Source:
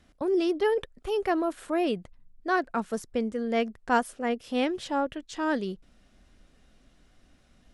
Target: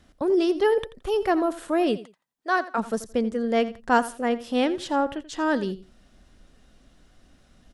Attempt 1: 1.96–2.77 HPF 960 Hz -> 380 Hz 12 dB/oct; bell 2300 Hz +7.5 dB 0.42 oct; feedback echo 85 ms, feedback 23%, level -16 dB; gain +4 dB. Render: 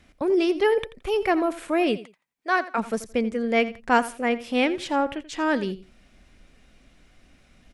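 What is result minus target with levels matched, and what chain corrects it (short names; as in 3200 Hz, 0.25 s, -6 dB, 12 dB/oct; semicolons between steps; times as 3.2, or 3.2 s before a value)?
2000 Hz band +2.5 dB
1.96–2.77 HPF 960 Hz -> 380 Hz 12 dB/oct; bell 2300 Hz -3.5 dB 0.42 oct; feedback echo 85 ms, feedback 23%, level -16 dB; gain +4 dB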